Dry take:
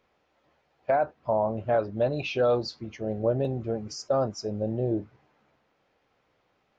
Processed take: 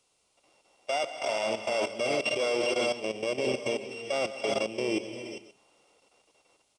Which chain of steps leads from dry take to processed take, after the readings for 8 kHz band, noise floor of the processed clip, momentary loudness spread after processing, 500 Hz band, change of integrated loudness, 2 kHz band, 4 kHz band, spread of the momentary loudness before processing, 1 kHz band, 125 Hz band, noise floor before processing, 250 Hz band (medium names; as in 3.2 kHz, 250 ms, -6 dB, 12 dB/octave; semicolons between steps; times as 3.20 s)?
no reading, -72 dBFS, 8 LU, -2.5 dB, -2.0 dB, +7.0 dB, +7.5 dB, 8 LU, -3.5 dB, -15.0 dB, -72 dBFS, -3.5 dB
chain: sorted samples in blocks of 16 samples; wow and flutter 20 cents; gated-style reverb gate 430 ms rising, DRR 5.5 dB; in parallel at -6 dB: one-sided clip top -28.5 dBFS, bottom -16 dBFS; on the sum: level rider gain up to 3 dB; three-band isolator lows -21 dB, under 270 Hz, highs -12 dB, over 6.5 kHz; on a send: delay 136 ms -12.5 dB; on the sum: level held to a coarse grid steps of 13 dB; added noise white -69 dBFS; peaking EQ 1.7 kHz -14 dB 0.34 oct; resampled via 22.05 kHz; peak limiter -17.5 dBFS, peak gain reduction 5 dB